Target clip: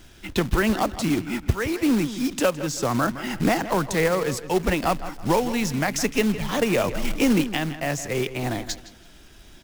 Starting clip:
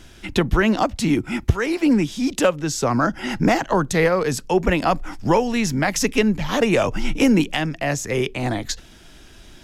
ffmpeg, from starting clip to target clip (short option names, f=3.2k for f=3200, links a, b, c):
-filter_complex "[0:a]acrusher=bits=3:mode=log:mix=0:aa=0.000001,asplit=2[a][b];[b]adelay=163,lowpass=f=4k:p=1,volume=-13dB,asplit=2[c][d];[d]adelay=163,lowpass=f=4k:p=1,volume=0.31,asplit=2[e][f];[f]adelay=163,lowpass=f=4k:p=1,volume=0.31[g];[a][c][e][g]amix=inputs=4:normalize=0,volume=-4dB"